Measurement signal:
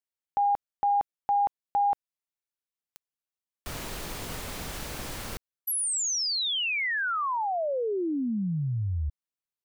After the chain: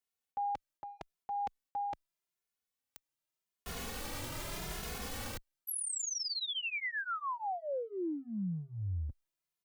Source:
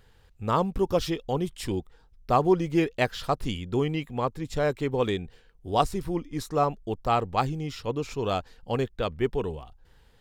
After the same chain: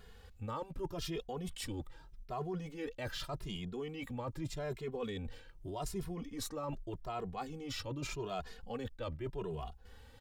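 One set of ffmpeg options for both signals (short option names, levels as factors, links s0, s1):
-filter_complex "[0:a]areverse,acompressor=threshold=0.0112:ratio=8:attack=2.5:release=63:knee=1:detection=rms,areverse,asplit=2[s0][s1];[s1]adelay=2.4,afreqshift=0.83[s2];[s0][s2]amix=inputs=2:normalize=1,volume=1.88"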